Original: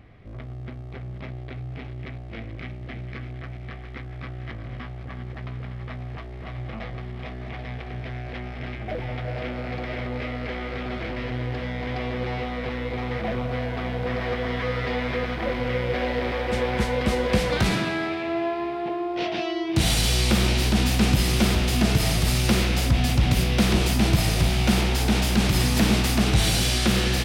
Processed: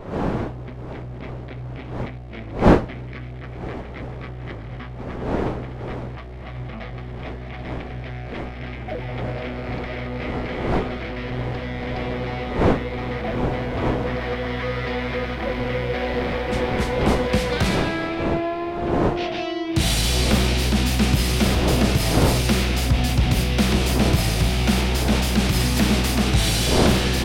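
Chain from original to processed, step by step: wind noise 510 Hz -29 dBFS; trim +1 dB

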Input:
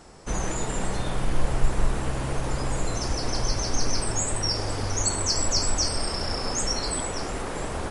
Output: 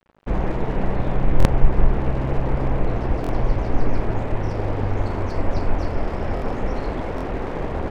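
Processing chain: low-pass 2.2 kHz 24 dB/octave; peaking EQ 1.4 kHz -7.5 dB 1.2 oct; crossover distortion -45 dBFS; buffer glitch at 1.38/3.22/6.35/7.16 s, samples 1024, times 2; loudspeaker Doppler distortion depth 0.7 ms; trim +7.5 dB

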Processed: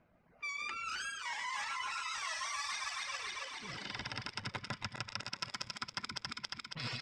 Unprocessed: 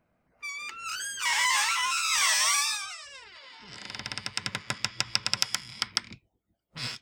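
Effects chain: backward echo that repeats 138 ms, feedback 75%, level -4 dB; low-pass 4.4 kHz 12 dB/octave; on a send: multi-tap echo 124/207 ms -13/-19 dB; on the sum: reverb removal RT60 1.8 s; dynamic bell 2.9 kHz, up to -6 dB, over -40 dBFS, Q 0.71; reverse; compression 10:1, threshold -39 dBFS, peak gain reduction 14 dB; reverse; trim +2.5 dB

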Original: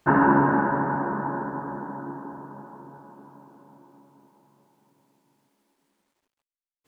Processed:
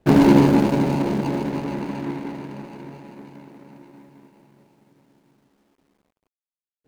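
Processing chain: median filter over 41 samples; dynamic bell 1.9 kHz, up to -5 dB, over -42 dBFS, Q 0.73; trim +9 dB

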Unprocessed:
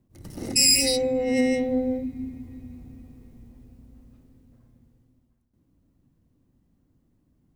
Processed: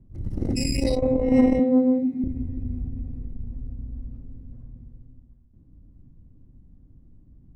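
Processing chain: 1.59–2.24 s: high-pass 190 Hz 24 dB/octave; tilt EQ -4.5 dB/octave; transformer saturation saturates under 210 Hz; trim -1 dB

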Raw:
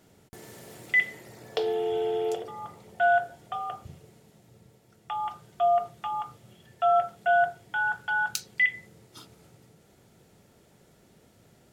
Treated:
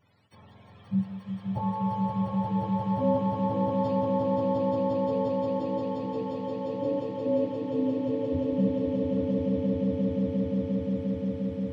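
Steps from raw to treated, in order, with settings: spectrum inverted on a logarithmic axis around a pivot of 620 Hz; echo with a slow build-up 176 ms, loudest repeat 8, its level -3 dB; trim -4.5 dB

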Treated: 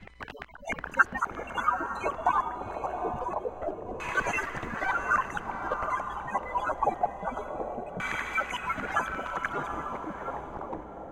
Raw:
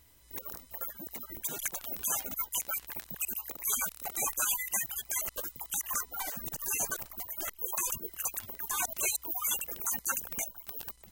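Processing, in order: reverse the whole clip; echo that smears into a reverb 791 ms, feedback 44%, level -5 dB; LFO low-pass saw down 0.25 Hz 560–2200 Hz; trim +8.5 dB

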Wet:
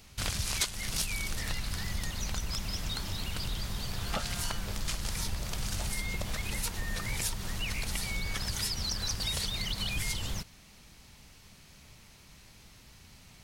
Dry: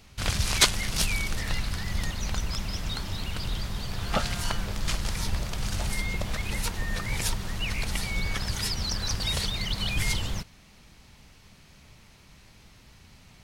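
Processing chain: treble shelf 5.2 kHz +7.5 dB; compression 4:1, threshold -27 dBFS, peak gain reduction 13.5 dB; trim -2.5 dB

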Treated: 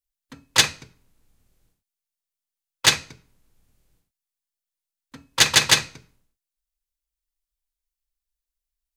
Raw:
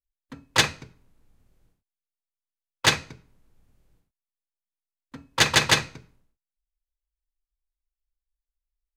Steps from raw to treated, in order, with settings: treble shelf 2.6 kHz +10 dB; trim -2.5 dB

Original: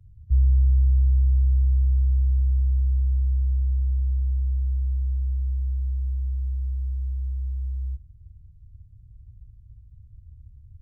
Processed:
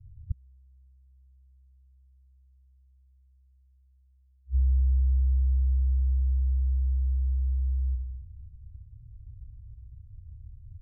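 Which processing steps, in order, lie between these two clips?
spring tank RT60 2.5 s, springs 32/47 ms, DRR 7.5 dB; inverted gate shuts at -18 dBFS, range -41 dB; loudest bins only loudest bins 8

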